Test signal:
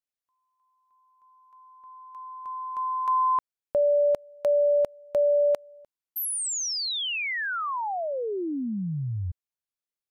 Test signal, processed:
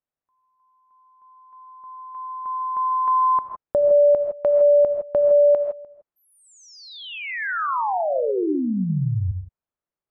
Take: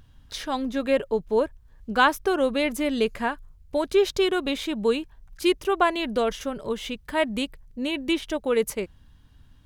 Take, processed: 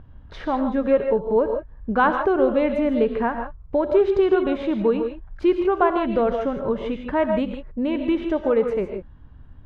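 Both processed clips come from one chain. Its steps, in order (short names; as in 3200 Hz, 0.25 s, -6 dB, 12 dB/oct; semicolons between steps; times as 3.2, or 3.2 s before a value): LPF 1300 Hz 12 dB/oct; in parallel at +3 dB: compressor, threshold -30 dBFS; on the sum: non-linear reverb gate 0.18 s rising, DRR 5.5 dB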